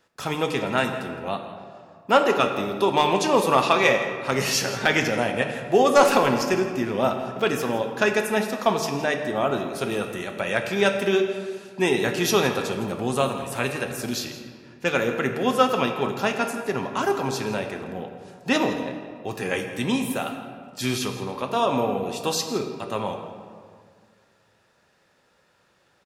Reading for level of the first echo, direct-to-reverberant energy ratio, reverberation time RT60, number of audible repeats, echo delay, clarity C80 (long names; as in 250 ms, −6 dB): −15.5 dB, 4.5 dB, 2.0 s, 1, 165 ms, 7.5 dB